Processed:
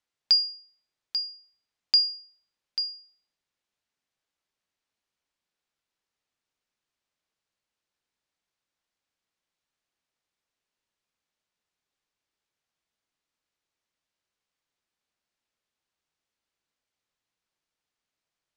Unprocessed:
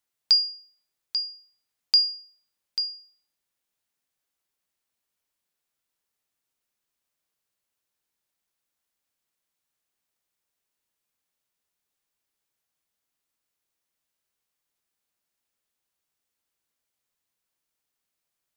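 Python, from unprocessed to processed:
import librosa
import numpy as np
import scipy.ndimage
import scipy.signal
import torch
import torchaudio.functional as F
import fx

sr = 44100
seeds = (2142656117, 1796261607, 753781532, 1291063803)

y = scipy.signal.sosfilt(scipy.signal.butter(2, 5800.0, 'lowpass', fs=sr, output='sos'), x)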